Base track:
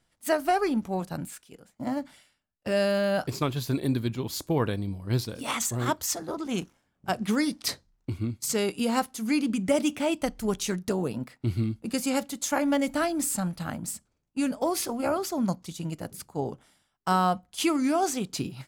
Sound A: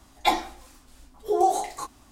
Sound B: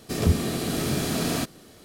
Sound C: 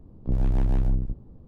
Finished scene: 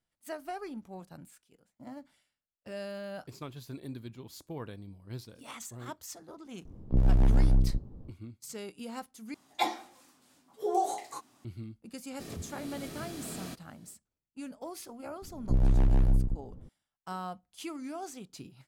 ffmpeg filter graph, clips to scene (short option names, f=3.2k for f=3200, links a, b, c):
-filter_complex "[3:a]asplit=2[a][b];[0:a]volume=-15dB[c];[1:a]highpass=f=130:w=0.5412,highpass=f=130:w=1.3066[d];[2:a]alimiter=limit=-15.5dB:level=0:latency=1:release=312[e];[c]asplit=2[f][g];[f]atrim=end=9.344[h];[d]atrim=end=2.11,asetpts=PTS-STARTPTS,volume=-7.5dB[i];[g]atrim=start=11.446[j];[a]atrim=end=1.47,asetpts=PTS-STARTPTS,afade=t=in:d=0.004:c=hsin,afade=t=out:st=1.466:d=0.004:c=hsin,adelay=6650[k];[e]atrim=end=1.84,asetpts=PTS-STARTPTS,volume=-15.5dB,afade=t=in:d=0.004:c=hsin,afade=t=out:st=1.836:d=0.004:c=hsin,adelay=12100[l];[b]atrim=end=1.47,asetpts=PTS-STARTPTS,volume=-1dB,afade=t=in:d=0.004:c=hsin,afade=t=out:st=1.466:d=0.004:c=hsin,adelay=15220[m];[h][i]acrossfade=d=0.004:c1=hsin:c2=hsin[n];[n][j]acrossfade=d=0.004:c1=hsin:c2=hsin[o];[o][k][l][m]amix=inputs=4:normalize=0"